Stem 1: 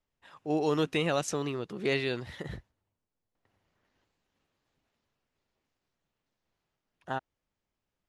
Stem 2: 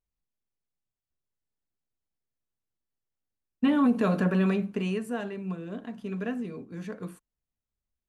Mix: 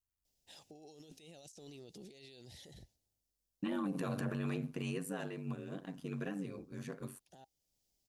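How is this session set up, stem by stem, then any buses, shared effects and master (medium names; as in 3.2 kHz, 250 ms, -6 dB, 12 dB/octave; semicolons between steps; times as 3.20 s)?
-10.5 dB, 0.25 s, no send, FFT filter 800 Hz 0 dB, 1.1 kHz -19 dB, 5.1 kHz +14 dB; compressor with a negative ratio -41 dBFS, ratio -1; peak limiter -32.5 dBFS, peak gain reduction 11 dB; auto duck -8 dB, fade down 1.65 s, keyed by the second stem
-4.5 dB, 0.00 s, no send, treble shelf 4.8 kHz +11.5 dB; ring modulator 48 Hz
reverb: none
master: peak limiter -28.5 dBFS, peak gain reduction 9.5 dB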